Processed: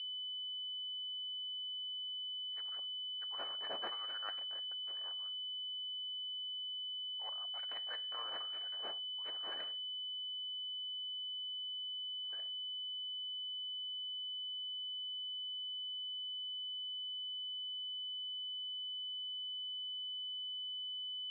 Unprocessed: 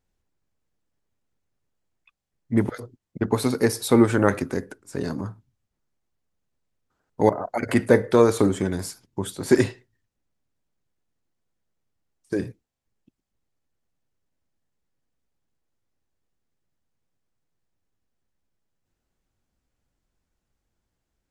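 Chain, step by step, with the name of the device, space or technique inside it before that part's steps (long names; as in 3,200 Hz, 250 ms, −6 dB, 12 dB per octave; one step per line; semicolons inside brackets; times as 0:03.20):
Bessel high-pass filter 2,000 Hz, order 4
toy sound module (linearly interpolated sample-rate reduction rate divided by 8×; switching amplifier with a slow clock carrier 3,000 Hz; loudspeaker in its box 700–4,200 Hz, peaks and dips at 940 Hz −8 dB, 1,400 Hz −4 dB, 2,000 Hz −4 dB)
level −1.5 dB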